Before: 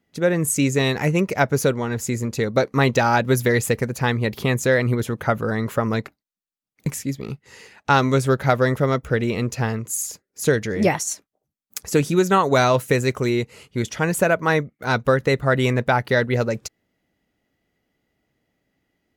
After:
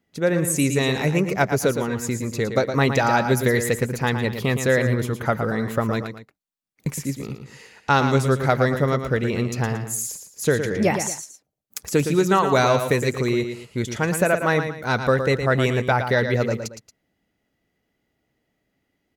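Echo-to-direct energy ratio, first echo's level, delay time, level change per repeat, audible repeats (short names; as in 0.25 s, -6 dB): -7.5 dB, -8.0 dB, 0.114 s, -9.0 dB, 2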